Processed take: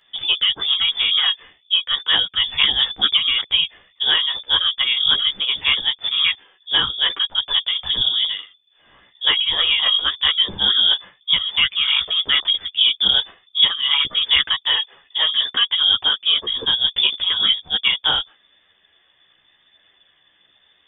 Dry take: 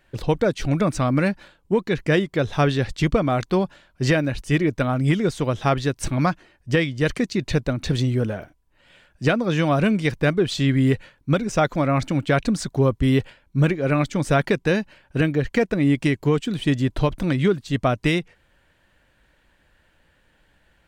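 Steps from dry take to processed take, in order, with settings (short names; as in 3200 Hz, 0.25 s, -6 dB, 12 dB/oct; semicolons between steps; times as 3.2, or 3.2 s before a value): inverted band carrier 3500 Hz; chorus voices 2, 0.88 Hz, delay 13 ms, depth 3 ms; gain +4.5 dB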